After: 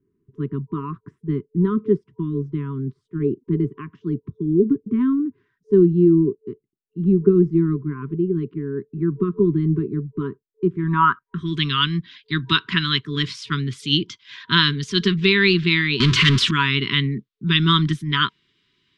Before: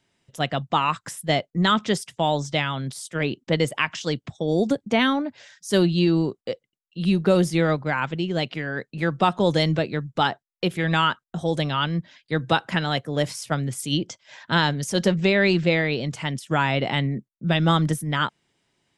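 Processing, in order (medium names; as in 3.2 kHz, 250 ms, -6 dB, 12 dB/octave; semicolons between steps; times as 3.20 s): 16.00–16.51 s: power-law waveshaper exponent 0.35; FFT band-reject 440–960 Hz; low-pass sweep 490 Hz -> 3.7 kHz, 10.64–11.68 s; trim +2 dB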